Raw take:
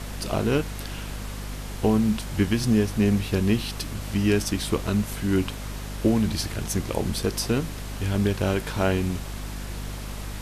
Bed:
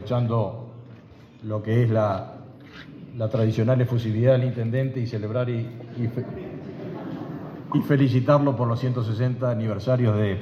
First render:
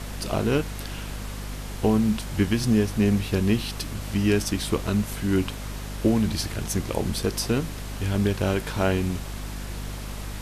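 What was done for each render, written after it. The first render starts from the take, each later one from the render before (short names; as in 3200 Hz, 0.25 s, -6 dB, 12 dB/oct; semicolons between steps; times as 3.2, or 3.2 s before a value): nothing audible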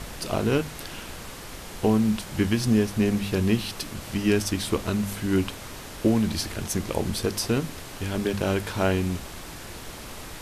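de-hum 50 Hz, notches 5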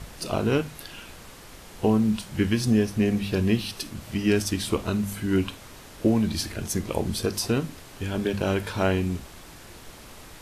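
noise print and reduce 6 dB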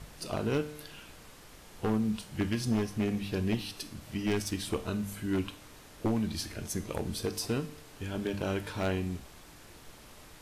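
one-sided fold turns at -16.5 dBFS; resonator 150 Hz, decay 0.8 s, harmonics all, mix 60%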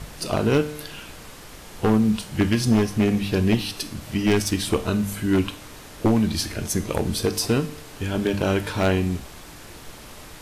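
gain +10.5 dB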